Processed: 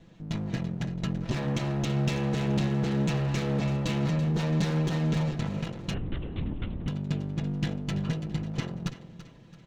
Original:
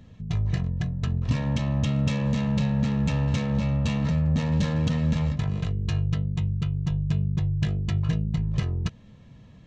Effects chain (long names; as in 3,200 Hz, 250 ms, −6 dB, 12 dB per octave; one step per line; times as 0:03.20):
lower of the sound and its delayed copy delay 6 ms
low-shelf EQ 160 Hz −6 dB
notch filter 1,100 Hz, Q 19
repeating echo 334 ms, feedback 40%, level −13 dB
0:05.94–0:06.88: linear-prediction vocoder at 8 kHz whisper